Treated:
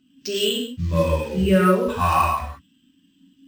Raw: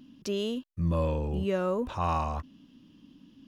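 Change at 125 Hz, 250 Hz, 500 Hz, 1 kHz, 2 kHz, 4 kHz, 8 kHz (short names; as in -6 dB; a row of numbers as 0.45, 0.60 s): +7.5 dB, +10.0 dB, +9.0 dB, +11.0 dB, +15.0 dB, +15.5 dB, n/a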